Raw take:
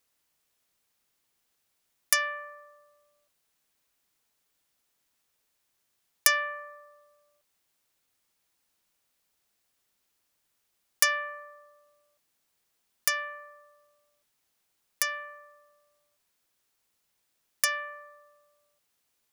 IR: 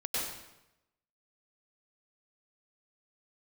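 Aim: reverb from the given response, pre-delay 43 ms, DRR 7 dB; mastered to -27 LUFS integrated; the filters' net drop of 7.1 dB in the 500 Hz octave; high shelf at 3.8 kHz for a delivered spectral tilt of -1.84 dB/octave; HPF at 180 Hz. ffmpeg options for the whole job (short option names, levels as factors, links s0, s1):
-filter_complex "[0:a]highpass=180,equalizer=f=500:t=o:g=-8.5,highshelf=f=3800:g=-5.5,asplit=2[s0][s1];[1:a]atrim=start_sample=2205,adelay=43[s2];[s1][s2]afir=irnorm=-1:irlink=0,volume=0.224[s3];[s0][s3]amix=inputs=2:normalize=0,volume=1.58"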